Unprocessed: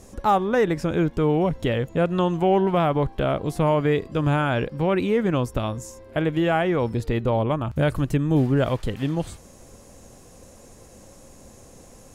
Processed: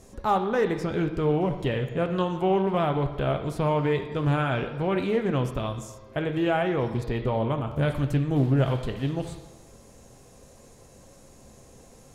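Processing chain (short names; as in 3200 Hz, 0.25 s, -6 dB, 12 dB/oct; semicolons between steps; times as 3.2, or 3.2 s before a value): on a send at -6.5 dB: resonant high shelf 6100 Hz -14 dB, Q 3 + reverb RT60 1.3 s, pre-delay 4 ms; on the sum: Doppler distortion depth 0.24 ms; gain -4.5 dB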